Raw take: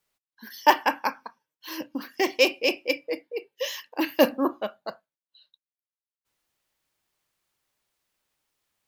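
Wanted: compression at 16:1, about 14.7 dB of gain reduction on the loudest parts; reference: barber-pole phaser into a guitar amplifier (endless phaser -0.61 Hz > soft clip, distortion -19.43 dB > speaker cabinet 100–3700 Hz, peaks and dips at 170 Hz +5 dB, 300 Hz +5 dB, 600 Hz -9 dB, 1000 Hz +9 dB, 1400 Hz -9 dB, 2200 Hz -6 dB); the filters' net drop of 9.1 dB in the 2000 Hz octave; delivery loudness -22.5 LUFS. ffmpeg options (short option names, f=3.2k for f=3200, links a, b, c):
-filter_complex "[0:a]equalizer=f=2k:t=o:g=-7,acompressor=threshold=-27dB:ratio=16,asplit=2[a][b];[b]afreqshift=-0.61[c];[a][c]amix=inputs=2:normalize=1,asoftclip=threshold=-24dB,highpass=100,equalizer=f=170:t=q:w=4:g=5,equalizer=f=300:t=q:w=4:g=5,equalizer=f=600:t=q:w=4:g=-9,equalizer=f=1k:t=q:w=4:g=9,equalizer=f=1.4k:t=q:w=4:g=-9,equalizer=f=2.2k:t=q:w=4:g=-6,lowpass=f=3.7k:w=0.5412,lowpass=f=3.7k:w=1.3066,volume=16.5dB"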